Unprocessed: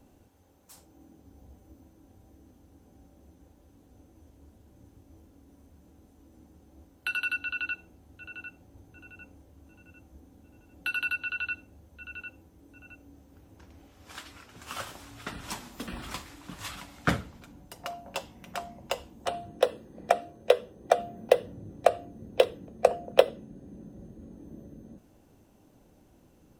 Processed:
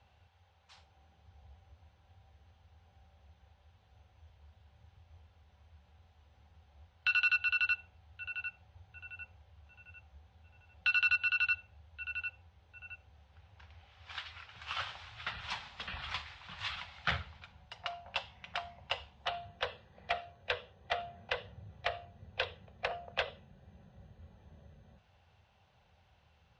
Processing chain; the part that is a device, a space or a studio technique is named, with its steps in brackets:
scooped metal amplifier (tube saturation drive 24 dB, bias 0.35; loudspeaker in its box 78–3,800 Hz, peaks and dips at 83 Hz +7 dB, 280 Hz −9 dB, 800 Hz +4 dB; guitar amp tone stack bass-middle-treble 10-0-10)
level +8 dB

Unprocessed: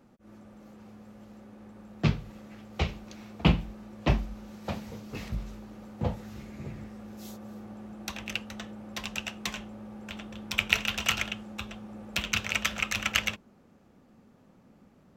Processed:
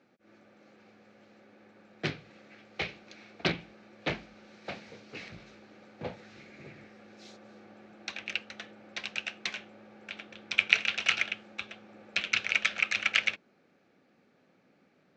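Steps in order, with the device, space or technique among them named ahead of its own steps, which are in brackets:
full-range speaker at full volume (highs frequency-modulated by the lows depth 0.9 ms; loudspeaker in its box 210–6,300 Hz, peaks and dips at 220 Hz −7 dB, 1,000 Hz −7 dB, 1,600 Hz +5 dB, 2,300 Hz +8 dB, 4,100 Hz +5 dB)
level −3.5 dB

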